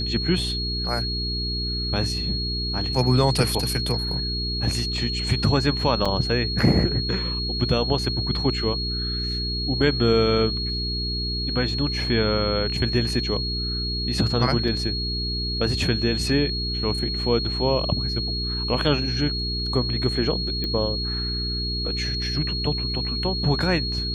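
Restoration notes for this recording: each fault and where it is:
mains hum 60 Hz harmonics 7 −29 dBFS
whistle 4,300 Hz −27 dBFS
0:06.05–0:06.06: drop-out 5.6 ms
0:14.68: drop-out 3.7 ms
0:20.64: click −15 dBFS

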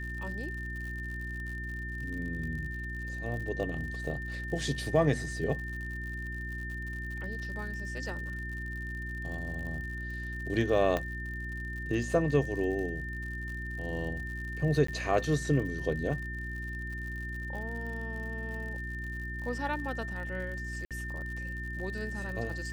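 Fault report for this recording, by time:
surface crackle 80 per second −40 dBFS
mains hum 60 Hz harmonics 6 −39 dBFS
whistle 1,800 Hz −39 dBFS
0:10.97: click −17 dBFS
0:14.87–0:14.88: drop-out 14 ms
0:20.85–0:20.91: drop-out 57 ms

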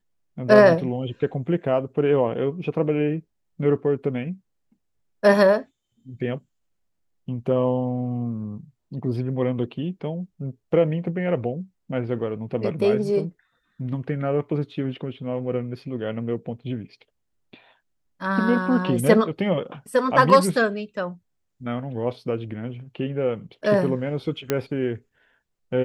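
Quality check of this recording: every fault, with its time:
0:24.50: click −8 dBFS

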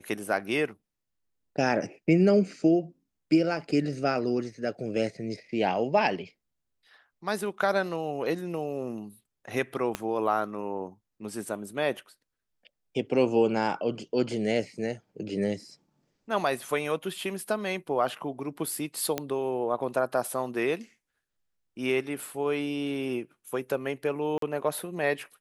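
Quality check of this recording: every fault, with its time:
0:09.95: click −14 dBFS
0:19.18: click −13 dBFS
0:24.38–0:24.42: drop-out 43 ms

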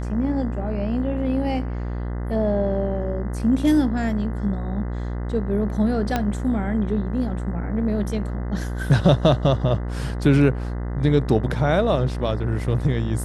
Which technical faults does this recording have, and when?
mains buzz 60 Hz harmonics 34 −27 dBFS
0:06.16: click −8 dBFS

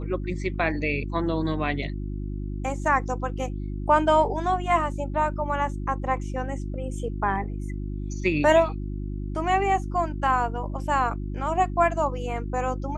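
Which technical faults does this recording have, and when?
mains hum 50 Hz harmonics 7 −31 dBFS

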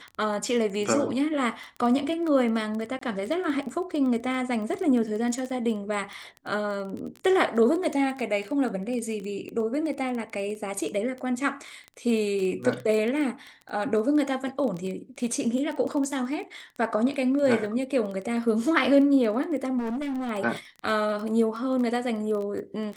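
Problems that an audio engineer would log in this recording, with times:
surface crackle 14 per second −30 dBFS
0:02.99–0:03.01: drop-out 24 ms
0:19.78–0:20.30: clipping −27 dBFS

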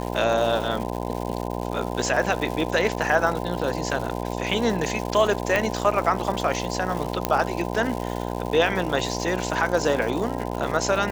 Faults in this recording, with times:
mains buzz 60 Hz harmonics 17 −29 dBFS
surface crackle 280 per second −29 dBFS
0:05.56: click −8 dBFS
0:07.25: click −6 dBFS

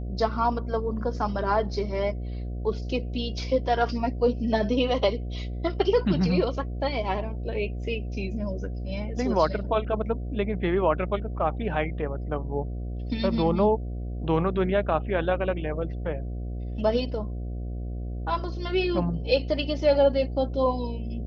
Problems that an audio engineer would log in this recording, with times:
mains buzz 60 Hz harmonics 12 −32 dBFS

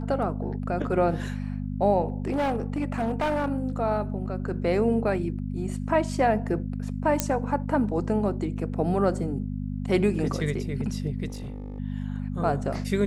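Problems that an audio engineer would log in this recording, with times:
mains hum 50 Hz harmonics 5 −31 dBFS
0:02.10–0:03.50: clipping −22 dBFS
0:07.20: click −6 dBFS
0:11.27–0:11.80: clipping −31.5 dBFS

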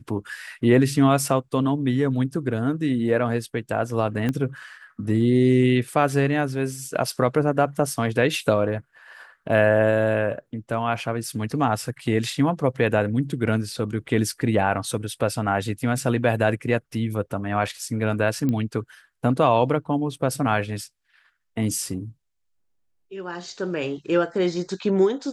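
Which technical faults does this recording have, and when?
0:04.29: click −13 dBFS
0:18.49: click −14 dBFS

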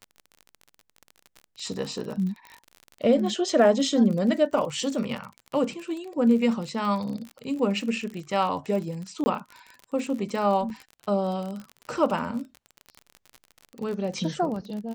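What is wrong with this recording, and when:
surface crackle 39 per second −32 dBFS
0:09.24–0:09.26: drop-out 20 ms
0:10.70: drop-out 2.4 ms

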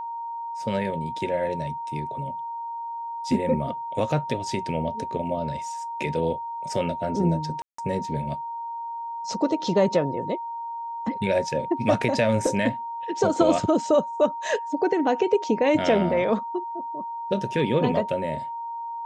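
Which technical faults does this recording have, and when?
whistle 930 Hz −30 dBFS
0:07.62–0:07.78: drop-out 164 ms

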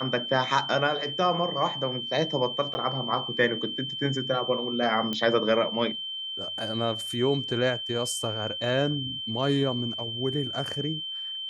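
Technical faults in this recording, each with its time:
whistle 3,100 Hz −32 dBFS
0:02.74–0:02.75: drop-out 10 ms
0:05.13: click −16 dBFS

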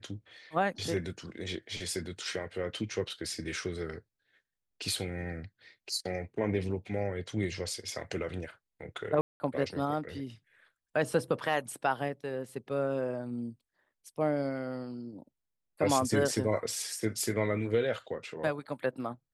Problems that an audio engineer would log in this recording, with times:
0:09.21–0:09.40: drop-out 190 ms

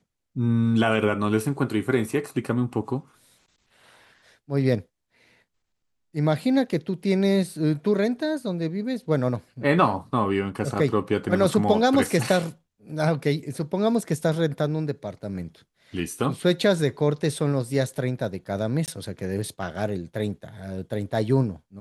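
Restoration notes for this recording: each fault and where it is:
0:18.86–0:18.88: drop-out 18 ms

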